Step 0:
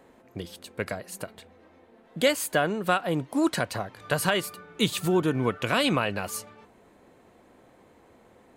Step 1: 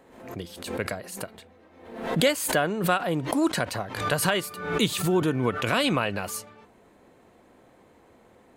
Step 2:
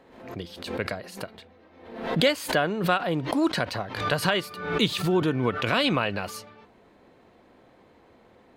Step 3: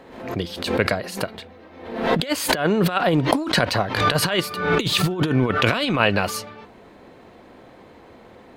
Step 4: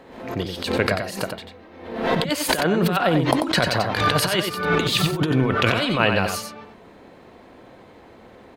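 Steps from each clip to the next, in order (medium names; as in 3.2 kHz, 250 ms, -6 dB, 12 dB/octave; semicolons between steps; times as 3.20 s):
swell ahead of each attack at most 71 dB/s
resonant high shelf 6 kHz -7.5 dB, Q 1.5
compressor with a negative ratio -26 dBFS, ratio -0.5; trim +7.5 dB
delay 91 ms -6 dB; trim -1 dB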